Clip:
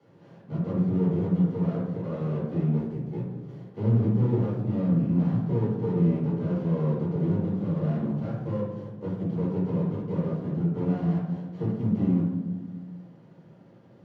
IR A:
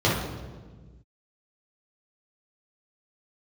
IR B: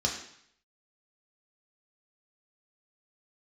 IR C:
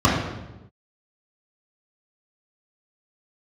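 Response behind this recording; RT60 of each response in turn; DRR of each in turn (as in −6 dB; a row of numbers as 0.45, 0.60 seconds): A; 1.4, 0.65, 1.0 seconds; −7.5, −1.0, −7.0 decibels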